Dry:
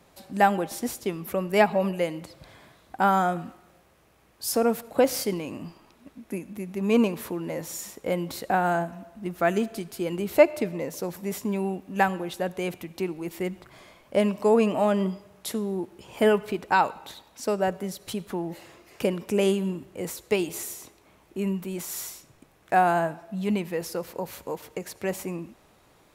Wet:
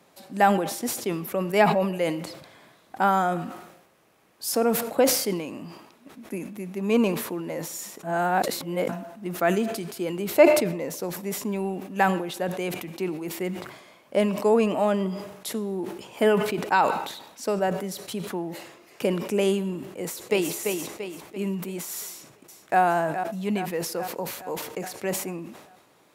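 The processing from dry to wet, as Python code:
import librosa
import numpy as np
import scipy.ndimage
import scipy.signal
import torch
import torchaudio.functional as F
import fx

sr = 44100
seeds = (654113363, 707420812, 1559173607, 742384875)

y = fx.echo_throw(x, sr, start_s=19.91, length_s=0.61, ms=340, feedback_pct=45, wet_db=-4.5)
y = fx.echo_throw(y, sr, start_s=22.06, length_s=0.75, ms=420, feedback_pct=60, wet_db=-9.0)
y = fx.edit(y, sr, fx.reverse_span(start_s=8.03, length_s=0.86), tone=tone)
y = scipy.signal.sosfilt(scipy.signal.butter(2, 160.0, 'highpass', fs=sr, output='sos'), y)
y = fx.sustainer(y, sr, db_per_s=64.0)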